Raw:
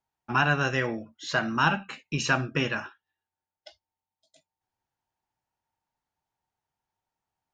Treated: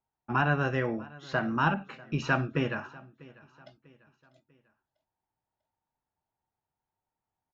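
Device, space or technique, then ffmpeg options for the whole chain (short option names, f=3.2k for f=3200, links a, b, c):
through cloth: -filter_complex "[0:a]lowpass=6.3k,highshelf=f=2.3k:g=-14.5,aecho=1:1:645|1290|1935:0.0794|0.0334|0.014,asettb=1/sr,asplit=3[a][b][c];[a]atrim=end=1.744[d];[b]atrim=start=1.74:end=2.52,asetpts=PTS-STARTPTS,afade=t=in:d=0.004:c=qsin,afade=t=out:st=0.776:d=0.004:c=qsin,adynamicequalizer=threshold=0.0141:dfrequency=1500:dqfactor=0.7:tfrequency=1500:tqfactor=0.7:attack=5:release=100:ratio=0.375:range=2.5:mode=boostabove:tftype=highshelf[e];[c]atrim=start=2.516[f];[d][e]acrossfade=d=0.004:c1=hsin:c2=qsin[g];[g][f]acrossfade=d=0.004:c1=qsin:c2=hsin"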